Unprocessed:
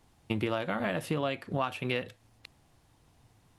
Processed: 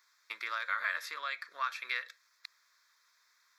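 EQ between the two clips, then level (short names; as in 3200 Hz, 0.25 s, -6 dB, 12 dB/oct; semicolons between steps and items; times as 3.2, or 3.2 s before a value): HPF 940 Hz 24 dB/oct; fixed phaser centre 2900 Hz, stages 6; +5.5 dB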